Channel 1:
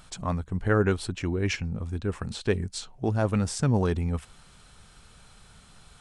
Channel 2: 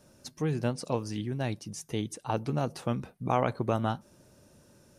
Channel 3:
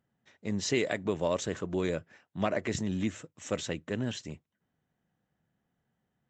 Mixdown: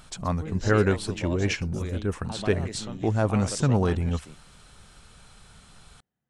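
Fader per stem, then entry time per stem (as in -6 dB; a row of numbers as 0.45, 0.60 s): +1.5, -9.0, -6.5 dB; 0.00, 0.00, 0.00 s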